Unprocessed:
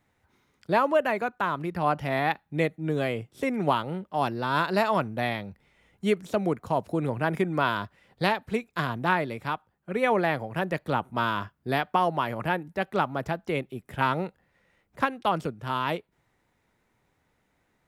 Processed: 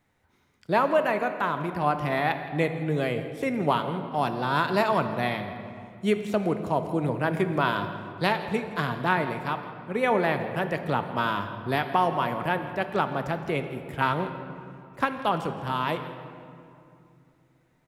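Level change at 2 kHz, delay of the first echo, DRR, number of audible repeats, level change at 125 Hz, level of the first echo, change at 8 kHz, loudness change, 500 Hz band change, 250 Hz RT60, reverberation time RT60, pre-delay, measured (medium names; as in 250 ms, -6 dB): +0.5 dB, 165 ms, 7.5 dB, 1, +1.5 dB, -17.5 dB, no reading, +1.0 dB, +1.0 dB, 3.8 s, 2.6 s, 3 ms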